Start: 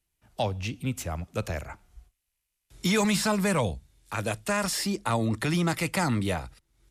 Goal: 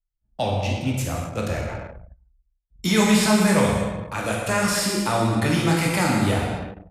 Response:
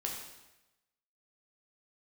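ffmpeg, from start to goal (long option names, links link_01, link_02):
-filter_complex "[1:a]atrim=start_sample=2205,afade=type=out:start_time=0.43:duration=0.01,atrim=end_sample=19404,asetrate=28665,aresample=44100[link_01];[0:a][link_01]afir=irnorm=-1:irlink=0,anlmdn=1,volume=1.5dB"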